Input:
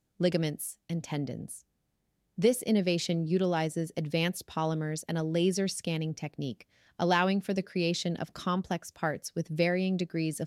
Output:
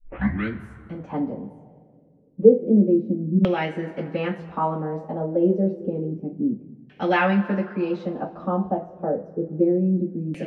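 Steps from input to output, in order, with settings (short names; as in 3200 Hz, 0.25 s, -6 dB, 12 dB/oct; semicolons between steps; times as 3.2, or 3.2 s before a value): tape start at the beginning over 0.62 s; two-slope reverb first 0.22 s, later 2.6 s, from -22 dB, DRR -8.5 dB; LFO low-pass saw down 0.29 Hz 220–2600 Hz; gain -5.5 dB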